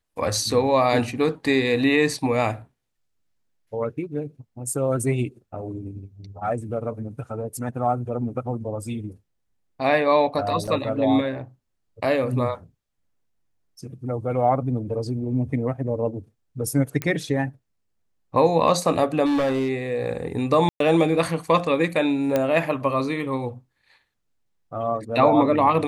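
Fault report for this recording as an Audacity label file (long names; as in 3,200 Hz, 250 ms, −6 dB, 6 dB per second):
10.670000	10.680000	drop-out 6.2 ms
17.020000	17.020000	click −11 dBFS
19.250000	19.700000	clipping −18.5 dBFS
20.690000	20.800000	drop-out 113 ms
22.360000	22.360000	click −9 dBFS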